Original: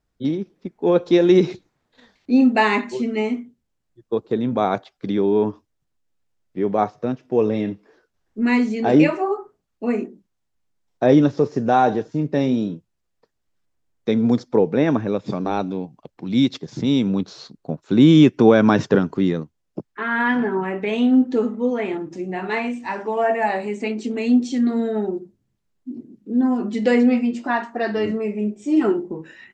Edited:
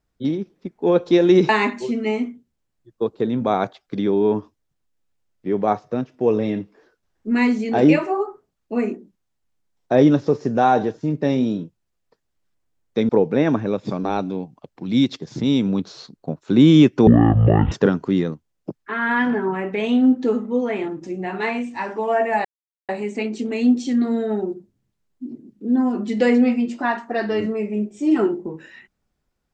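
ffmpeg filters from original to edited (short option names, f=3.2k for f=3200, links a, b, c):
-filter_complex "[0:a]asplit=6[a][b][c][d][e][f];[a]atrim=end=1.492[g];[b]atrim=start=2.598:end=14.202[h];[c]atrim=start=14.498:end=18.484[i];[d]atrim=start=18.48:end=18.81,asetpts=PTS-STARTPTS,asetrate=22491,aresample=44100,atrim=end_sample=28535,asetpts=PTS-STARTPTS[j];[e]atrim=start=18.806:end=23.54,asetpts=PTS-STARTPTS,afade=t=out:st=4.73:d=0.004:c=hsin,apad=pad_dur=0.44[k];[f]atrim=start=23.54,asetpts=PTS-STARTPTS,afade=t=in:d=0.004:c=hsin[l];[g][h]acrossfade=d=0.004:c1=hsin:c2=hsin[m];[m][i]acrossfade=d=0.004:c1=hsin:c2=hsin[n];[n][j]acrossfade=d=0.004:c1=hsin:c2=hsin[o];[k][l]concat=n=2:v=0:a=1[p];[o][p]acrossfade=d=0.004:c1=hsin:c2=hsin"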